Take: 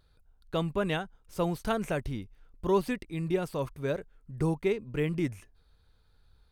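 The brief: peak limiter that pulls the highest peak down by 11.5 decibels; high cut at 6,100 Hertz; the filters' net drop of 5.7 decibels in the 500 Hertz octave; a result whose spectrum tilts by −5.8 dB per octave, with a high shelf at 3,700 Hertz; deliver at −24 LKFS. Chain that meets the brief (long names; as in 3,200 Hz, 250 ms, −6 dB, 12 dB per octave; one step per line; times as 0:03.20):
low-pass filter 6,100 Hz
parametric band 500 Hz −8 dB
high-shelf EQ 3,700 Hz +4.5 dB
level +16.5 dB
brickwall limiter −12.5 dBFS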